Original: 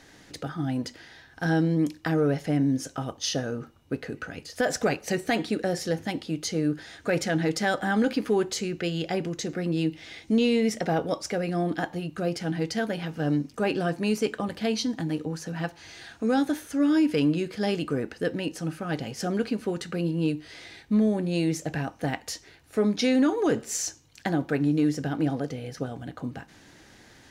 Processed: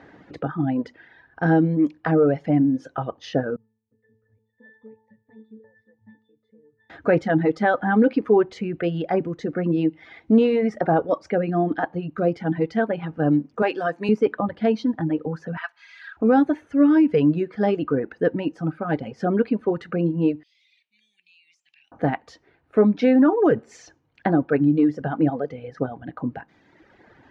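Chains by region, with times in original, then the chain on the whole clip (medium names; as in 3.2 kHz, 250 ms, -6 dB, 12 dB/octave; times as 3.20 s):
3.56–6.90 s: compression, threshold -28 dBFS + peaking EQ 280 Hz -6.5 dB 2.6 oct + pitch-class resonator A, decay 0.61 s
13.62–14.09 s: high-pass 140 Hz + tilt EQ +3 dB/octave
15.57–16.17 s: high-pass 1.2 kHz 24 dB/octave + comb 3.1 ms, depth 46% + waveshaping leveller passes 1
20.43–21.92 s: elliptic high-pass 2.5 kHz, stop band 50 dB + compression, threshold -48 dBFS + companded quantiser 8-bit
whole clip: high-pass 140 Hz 6 dB/octave; reverb removal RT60 1.7 s; low-pass 1.4 kHz 12 dB/octave; trim +8.5 dB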